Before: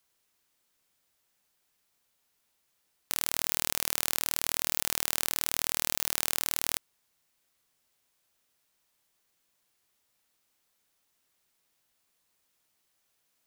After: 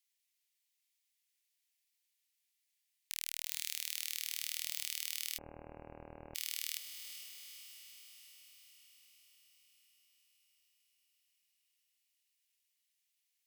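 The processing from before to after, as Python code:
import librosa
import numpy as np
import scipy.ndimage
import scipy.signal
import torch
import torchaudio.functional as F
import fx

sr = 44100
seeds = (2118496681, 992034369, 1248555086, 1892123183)

y = scipy.signal.sosfilt(scipy.signal.butter(8, 1900.0, 'highpass', fs=sr, output='sos'), x)
y = fx.clip_asym(y, sr, top_db=-14.0, bottom_db=-6.0)
y = fx.echo_diffused(y, sr, ms=456, feedback_pct=65, wet_db=-9.5)
y = fx.freq_invert(y, sr, carrier_hz=2800, at=(5.38, 6.35))
y = y * 10.0 ** (-7.5 / 20.0)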